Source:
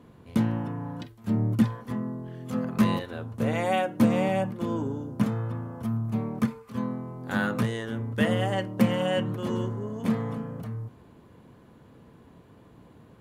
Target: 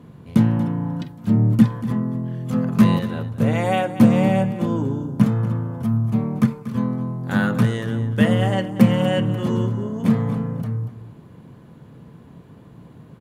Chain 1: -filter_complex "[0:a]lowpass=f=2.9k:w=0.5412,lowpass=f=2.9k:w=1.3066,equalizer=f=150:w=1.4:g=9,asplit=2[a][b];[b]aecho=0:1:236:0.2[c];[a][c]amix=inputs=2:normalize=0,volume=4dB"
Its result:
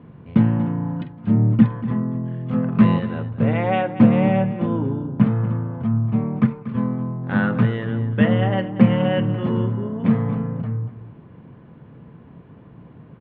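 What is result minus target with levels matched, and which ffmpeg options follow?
4000 Hz band -4.0 dB
-filter_complex "[0:a]equalizer=f=150:w=1.4:g=9,asplit=2[a][b];[b]aecho=0:1:236:0.2[c];[a][c]amix=inputs=2:normalize=0,volume=4dB"

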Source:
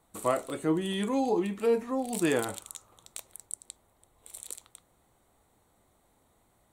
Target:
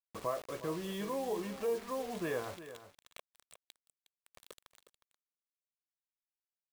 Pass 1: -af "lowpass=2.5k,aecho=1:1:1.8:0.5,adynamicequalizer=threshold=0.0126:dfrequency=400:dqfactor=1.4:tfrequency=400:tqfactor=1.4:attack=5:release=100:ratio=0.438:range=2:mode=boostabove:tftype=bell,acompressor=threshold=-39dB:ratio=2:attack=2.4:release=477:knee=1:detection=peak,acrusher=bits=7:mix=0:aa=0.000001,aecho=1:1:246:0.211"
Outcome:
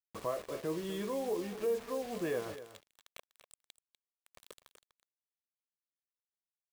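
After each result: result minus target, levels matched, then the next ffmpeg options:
echo 0.115 s early; 1000 Hz band -3.0 dB
-af "lowpass=2.5k,aecho=1:1:1.8:0.5,adynamicequalizer=threshold=0.0126:dfrequency=400:dqfactor=1.4:tfrequency=400:tqfactor=1.4:attack=5:release=100:ratio=0.438:range=2:mode=boostabove:tftype=bell,acompressor=threshold=-39dB:ratio=2:attack=2.4:release=477:knee=1:detection=peak,acrusher=bits=7:mix=0:aa=0.000001,aecho=1:1:361:0.211"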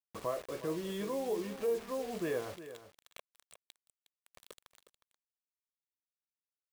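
1000 Hz band -3.0 dB
-af "lowpass=2.5k,aecho=1:1:1.8:0.5,adynamicequalizer=threshold=0.0126:dfrequency=1000:dqfactor=1.4:tfrequency=1000:tqfactor=1.4:attack=5:release=100:ratio=0.438:range=2:mode=boostabove:tftype=bell,acompressor=threshold=-39dB:ratio=2:attack=2.4:release=477:knee=1:detection=peak,acrusher=bits=7:mix=0:aa=0.000001,aecho=1:1:361:0.211"

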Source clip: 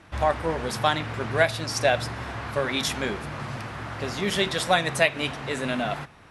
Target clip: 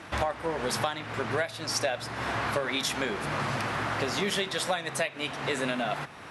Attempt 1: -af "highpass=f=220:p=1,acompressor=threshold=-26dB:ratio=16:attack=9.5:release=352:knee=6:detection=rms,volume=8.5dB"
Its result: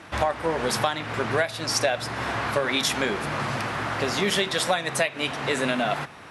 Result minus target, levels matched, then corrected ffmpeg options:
compressor: peak gain reduction -5.5 dB
-af "highpass=f=220:p=1,acompressor=threshold=-32dB:ratio=16:attack=9.5:release=352:knee=6:detection=rms,volume=8.5dB"

